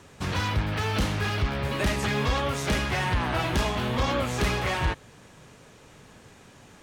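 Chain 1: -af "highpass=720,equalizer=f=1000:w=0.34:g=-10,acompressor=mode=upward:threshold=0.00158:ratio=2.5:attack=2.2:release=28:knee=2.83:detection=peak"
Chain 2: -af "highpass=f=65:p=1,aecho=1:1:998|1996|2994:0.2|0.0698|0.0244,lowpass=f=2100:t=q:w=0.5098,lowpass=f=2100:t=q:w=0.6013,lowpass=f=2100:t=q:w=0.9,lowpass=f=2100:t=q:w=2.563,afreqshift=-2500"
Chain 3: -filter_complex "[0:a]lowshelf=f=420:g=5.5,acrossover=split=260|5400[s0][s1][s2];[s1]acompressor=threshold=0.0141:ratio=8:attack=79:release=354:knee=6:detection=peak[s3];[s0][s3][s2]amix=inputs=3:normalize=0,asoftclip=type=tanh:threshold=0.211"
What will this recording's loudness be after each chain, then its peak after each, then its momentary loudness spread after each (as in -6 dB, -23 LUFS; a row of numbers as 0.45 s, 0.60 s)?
-36.5 LUFS, -25.5 LUFS, -27.0 LUFS; -20.0 dBFS, -13.5 dBFS, -15.0 dBFS; 4 LU, 14 LU, 2 LU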